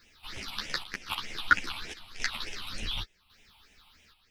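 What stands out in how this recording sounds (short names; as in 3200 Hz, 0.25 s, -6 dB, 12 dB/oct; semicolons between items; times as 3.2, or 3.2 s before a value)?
a quantiser's noise floor 12-bit, dither triangular; phasing stages 6, 3.3 Hz, lowest notch 440–1200 Hz; chopped level 0.91 Hz, depth 60%, duty 75%; a shimmering, thickened sound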